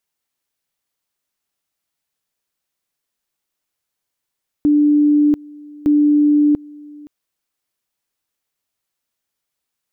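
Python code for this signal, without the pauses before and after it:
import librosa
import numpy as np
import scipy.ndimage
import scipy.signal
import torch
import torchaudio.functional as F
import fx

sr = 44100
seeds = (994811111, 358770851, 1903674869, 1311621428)

y = fx.two_level_tone(sr, hz=295.0, level_db=-9.5, drop_db=24.5, high_s=0.69, low_s=0.52, rounds=2)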